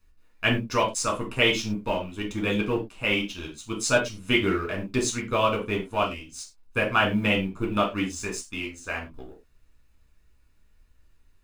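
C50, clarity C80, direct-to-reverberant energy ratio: 10.5 dB, 18.0 dB, −1.5 dB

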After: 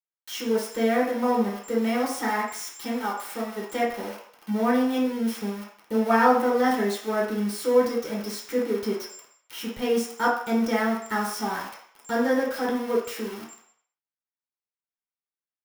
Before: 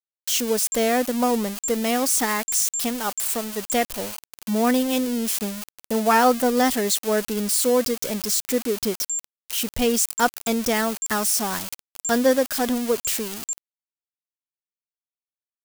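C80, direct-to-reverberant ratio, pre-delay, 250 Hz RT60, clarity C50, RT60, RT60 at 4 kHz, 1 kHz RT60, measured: 8.0 dB, −5.5 dB, 3 ms, 0.40 s, 4.0 dB, 0.60 s, 0.65 s, 0.60 s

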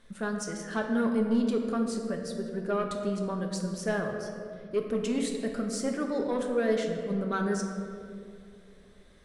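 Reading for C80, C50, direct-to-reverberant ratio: 5.5 dB, 4.0 dB, 2.0 dB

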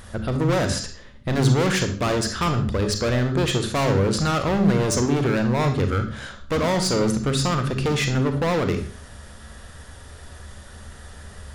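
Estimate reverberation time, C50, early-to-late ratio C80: 0.45 s, 9.0 dB, 13.0 dB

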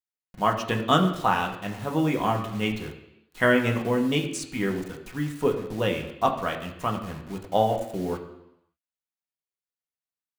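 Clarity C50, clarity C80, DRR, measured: 8.5 dB, 10.5 dB, 1.0 dB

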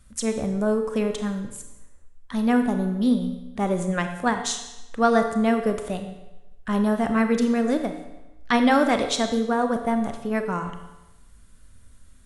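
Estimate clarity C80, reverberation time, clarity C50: 9.5 dB, 1.0 s, 7.5 dB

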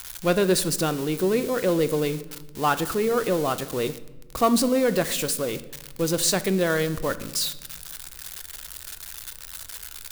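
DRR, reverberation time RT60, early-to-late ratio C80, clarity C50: 11.0 dB, 1.1 s, 18.0 dB, 16.0 dB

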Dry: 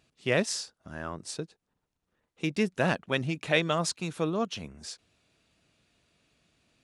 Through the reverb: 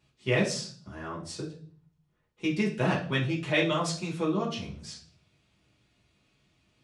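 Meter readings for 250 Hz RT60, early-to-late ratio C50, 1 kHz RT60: 0.80 s, 8.5 dB, 0.40 s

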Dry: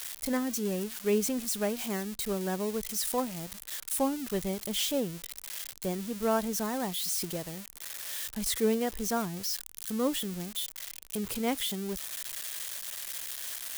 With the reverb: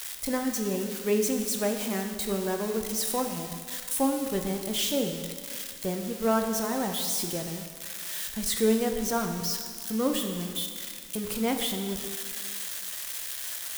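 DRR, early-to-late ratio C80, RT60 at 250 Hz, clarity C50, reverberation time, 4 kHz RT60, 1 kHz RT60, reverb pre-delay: 3.5 dB, 7.0 dB, 2.0 s, 5.5 dB, 1.9 s, 1.8 s, 1.9 s, 6 ms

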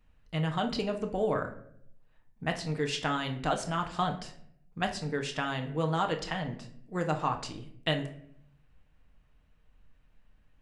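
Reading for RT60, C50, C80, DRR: 0.65 s, 10.5 dB, 14.5 dB, 3.5 dB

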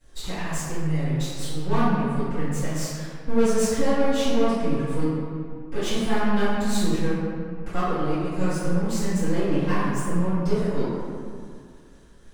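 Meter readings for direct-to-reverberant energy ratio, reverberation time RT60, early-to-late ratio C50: −20.0 dB, 2.1 s, −3.5 dB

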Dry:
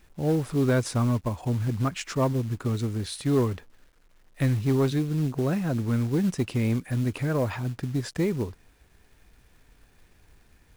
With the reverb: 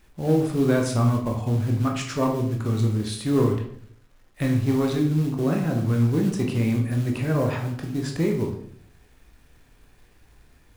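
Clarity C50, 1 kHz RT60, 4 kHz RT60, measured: 6.5 dB, 0.55 s, 0.45 s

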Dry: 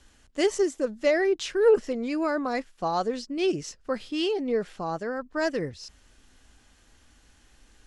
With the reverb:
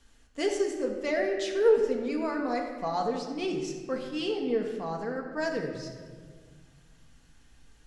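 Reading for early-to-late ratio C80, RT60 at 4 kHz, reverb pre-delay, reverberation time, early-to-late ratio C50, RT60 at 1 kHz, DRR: 7.0 dB, 1.1 s, 4 ms, 1.7 s, 5.0 dB, 1.5 s, 1.0 dB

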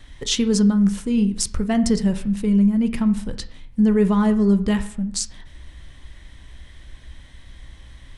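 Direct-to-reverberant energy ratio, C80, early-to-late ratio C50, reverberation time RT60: 9.5 dB, 17.0 dB, 14.0 dB, 0.65 s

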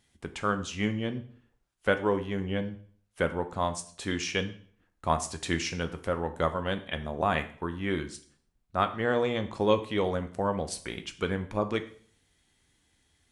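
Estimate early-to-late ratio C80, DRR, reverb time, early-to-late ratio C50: 17.5 dB, 7.5 dB, 0.50 s, 13.0 dB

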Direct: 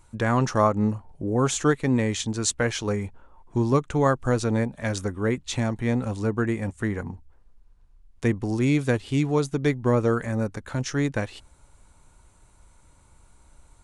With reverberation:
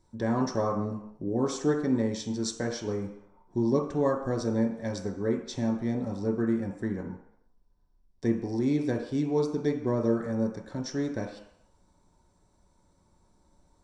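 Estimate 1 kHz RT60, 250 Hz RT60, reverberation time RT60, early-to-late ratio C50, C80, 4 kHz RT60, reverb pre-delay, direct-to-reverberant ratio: 0.75 s, 0.55 s, 0.70 s, 7.0 dB, 9.5 dB, 0.70 s, 3 ms, 0.0 dB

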